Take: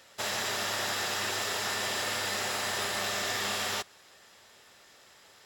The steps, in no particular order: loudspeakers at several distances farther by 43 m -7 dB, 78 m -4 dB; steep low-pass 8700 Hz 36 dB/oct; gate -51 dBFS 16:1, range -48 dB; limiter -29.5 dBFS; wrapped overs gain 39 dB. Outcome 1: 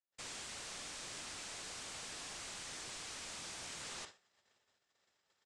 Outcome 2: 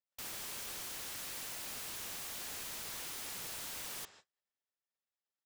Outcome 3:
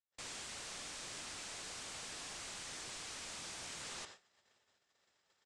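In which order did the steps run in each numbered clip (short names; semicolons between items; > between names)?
limiter > loudspeakers at several distances > wrapped overs > steep low-pass > gate; steep low-pass > gate > loudspeakers at several distances > limiter > wrapped overs; limiter > loudspeakers at several distances > gate > wrapped overs > steep low-pass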